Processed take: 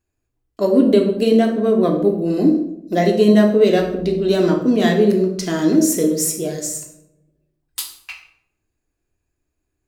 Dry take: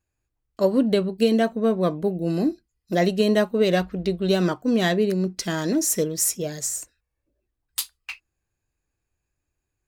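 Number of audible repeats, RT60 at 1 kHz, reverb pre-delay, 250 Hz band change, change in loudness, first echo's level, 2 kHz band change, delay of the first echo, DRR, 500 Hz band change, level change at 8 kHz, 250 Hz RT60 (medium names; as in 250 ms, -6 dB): no echo, 0.70 s, 3 ms, +7.0 dB, +6.5 dB, no echo, +2.0 dB, no echo, 2.0 dB, +6.5 dB, +1.5 dB, 1.1 s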